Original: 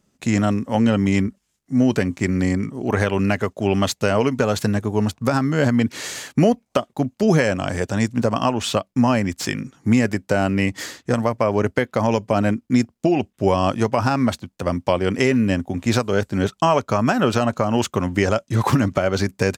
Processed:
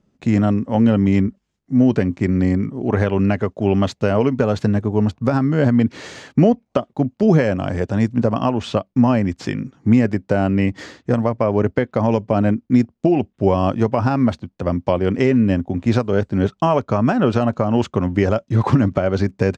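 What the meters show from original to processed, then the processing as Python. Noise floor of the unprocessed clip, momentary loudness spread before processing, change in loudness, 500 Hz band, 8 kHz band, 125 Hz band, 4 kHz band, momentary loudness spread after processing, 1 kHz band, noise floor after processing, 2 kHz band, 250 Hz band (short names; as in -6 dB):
-71 dBFS, 5 LU, +2.0 dB, +1.5 dB, under -10 dB, +3.5 dB, -6.0 dB, 6 LU, -1.0 dB, -68 dBFS, -3.5 dB, +3.0 dB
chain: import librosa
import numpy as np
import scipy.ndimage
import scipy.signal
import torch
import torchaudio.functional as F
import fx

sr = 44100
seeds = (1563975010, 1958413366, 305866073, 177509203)

y = scipy.signal.sosfilt(scipy.signal.butter(2, 5000.0, 'lowpass', fs=sr, output='sos'), x)
y = fx.tilt_shelf(y, sr, db=4.5, hz=940.0)
y = F.gain(torch.from_numpy(y), -1.0).numpy()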